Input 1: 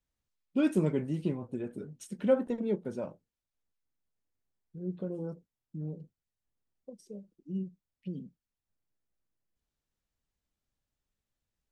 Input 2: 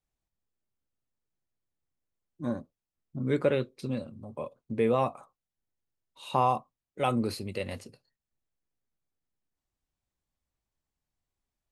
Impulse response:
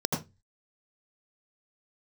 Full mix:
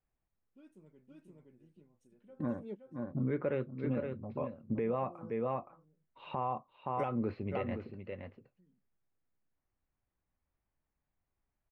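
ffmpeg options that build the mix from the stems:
-filter_complex "[0:a]acontrast=72,volume=-16dB,asplit=2[a][b];[b]volume=-22dB[c];[1:a]deesser=0.9,lowpass=f=2.3k:w=0.5412,lowpass=f=2.3k:w=1.3066,volume=1.5dB,asplit=3[d][e][f];[e]volume=-10dB[g];[f]apad=whole_len=516435[h];[a][h]sidechaingate=range=-23dB:threshold=-51dB:ratio=16:detection=peak[i];[c][g]amix=inputs=2:normalize=0,aecho=0:1:519:1[j];[i][d][j]amix=inputs=3:normalize=0,alimiter=level_in=0.5dB:limit=-24dB:level=0:latency=1:release=445,volume=-0.5dB"

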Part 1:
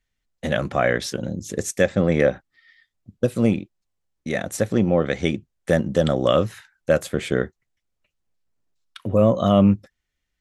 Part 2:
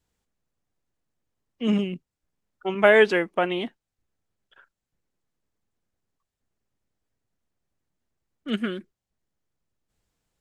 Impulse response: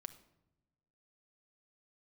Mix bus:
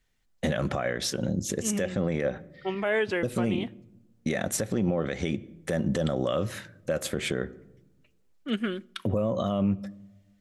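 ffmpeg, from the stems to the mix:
-filter_complex "[0:a]acompressor=threshold=-18dB:ratio=4,volume=1dB,asplit=2[a][b];[b]volume=-4.5dB[c];[1:a]dynaudnorm=f=470:g=11:m=5.5dB,volume=-6dB,asplit=2[d][e];[e]volume=-8dB[f];[2:a]atrim=start_sample=2205[g];[c][f]amix=inputs=2:normalize=0[h];[h][g]afir=irnorm=-1:irlink=0[i];[a][d][i]amix=inputs=3:normalize=0,alimiter=limit=-17dB:level=0:latency=1:release=137"

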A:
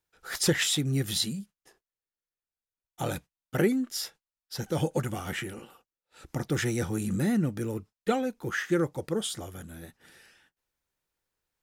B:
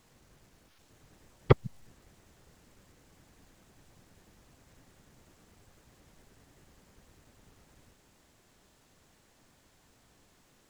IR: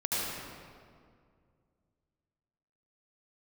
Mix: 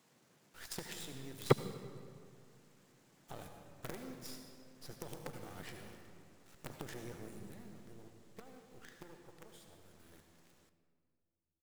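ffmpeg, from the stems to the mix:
-filter_complex "[0:a]acompressor=threshold=-30dB:ratio=5,acrusher=bits=5:dc=4:mix=0:aa=0.000001,adelay=300,volume=-4dB,afade=t=out:st=6.96:d=0.73:silence=0.334965,afade=t=in:st=9.88:d=0.49:silence=0.334965,asplit=2[a][b];[b]volume=-10.5dB[c];[1:a]highpass=f=140:w=0.5412,highpass=f=140:w=1.3066,volume=-5.5dB,asplit=2[d][e];[e]volume=-22.5dB[f];[2:a]atrim=start_sample=2205[g];[c][f]amix=inputs=2:normalize=0[h];[h][g]afir=irnorm=-1:irlink=0[i];[a][d][i]amix=inputs=3:normalize=0"

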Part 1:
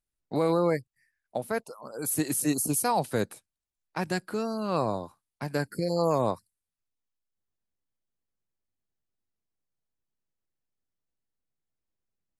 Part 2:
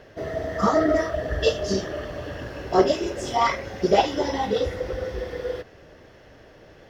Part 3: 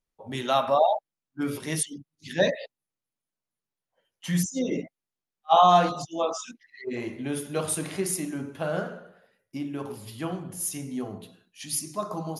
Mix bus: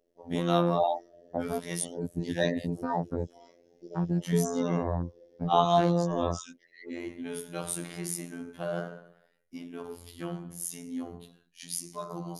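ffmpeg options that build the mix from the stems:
-filter_complex "[0:a]aemphasis=mode=reproduction:type=riaa,afwtdn=0.0316,volume=1.5dB[a];[1:a]firequalizer=gain_entry='entry(430,0);entry(1100,-25);entry(6200,9)':delay=0.05:min_phase=1,acrossover=split=220 3800:gain=0.0794 1 0.0891[b][c][d];[b][c][d]amix=inputs=3:normalize=0,volume=-18.5dB[e];[2:a]bandreject=f=2.6k:w=18,volume=-2dB[f];[a][e]amix=inputs=2:normalize=0,alimiter=limit=-16.5dB:level=0:latency=1:release=130,volume=0dB[g];[f][g]amix=inputs=2:normalize=0,afftfilt=real='hypot(re,im)*cos(PI*b)':imag='0':win_size=2048:overlap=0.75"

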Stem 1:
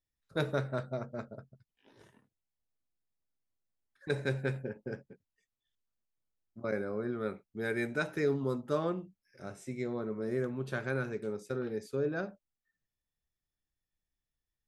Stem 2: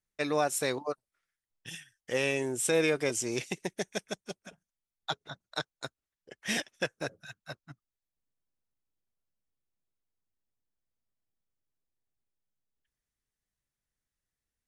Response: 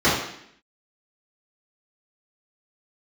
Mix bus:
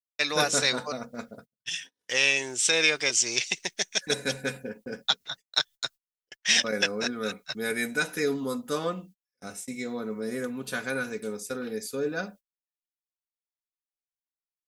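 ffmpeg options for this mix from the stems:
-filter_complex "[0:a]aecho=1:1:4.1:0.66,volume=0.5dB[a];[1:a]lowpass=f=5.7k:w=0.5412,lowpass=f=5.7k:w=1.3066,tiltshelf=f=690:g=-5.5,volume=-2dB[b];[a][b]amix=inputs=2:normalize=0,agate=range=-34dB:threshold=-49dB:ratio=16:detection=peak,crystalizer=i=5.5:c=0"

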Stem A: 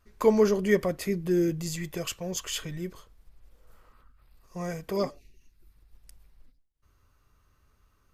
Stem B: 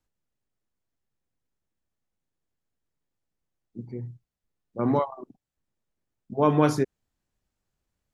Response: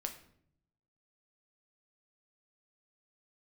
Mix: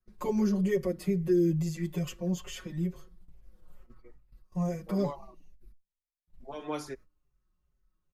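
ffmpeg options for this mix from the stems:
-filter_complex "[0:a]lowshelf=f=410:g=11.5,aecho=1:1:5.5:1,volume=-7.5dB,asplit=3[a][b][c];[a]atrim=end=5.72,asetpts=PTS-STARTPTS,afade=t=out:st=5.716:d=0.004:c=hsin[d];[b]atrim=start=5.72:end=6.27,asetpts=PTS-STARTPTS,volume=0[e];[c]atrim=start=6.27,asetpts=PTS-STARTPTS,afade=t=in:d=0.004:c=hsin[f];[d][e][f]concat=n=3:v=0:a=1,asplit=2[g][h];[h]volume=-18dB[i];[1:a]highpass=f=1.4k:p=1,adelay=100,volume=-2.5dB,asplit=2[j][k];[k]volume=-19dB[l];[2:a]atrim=start_sample=2205[m];[i][l]amix=inputs=2:normalize=0[n];[n][m]afir=irnorm=-1:irlink=0[o];[g][j][o]amix=inputs=3:normalize=0,agate=range=-14dB:threshold=-46dB:ratio=16:detection=peak,acrossover=split=120|540|3100[p][q][r][s];[p]acompressor=threshold=-43dB:ratio=4[t];[q]acompressor=threshold=-22dB:ratio=4[u];[r]acompressor=threshold=-37dB:ratio=4[v];[s]acompressor=threshold=-43dB:ratio=4[w];[t][u][v][w]amix=inputs=4:normalize=0,asplit=2[x][y];[y]adelay=5.6,afreqshift=-2.3[z];[x][z]amix=inputs=2:normalize=1"

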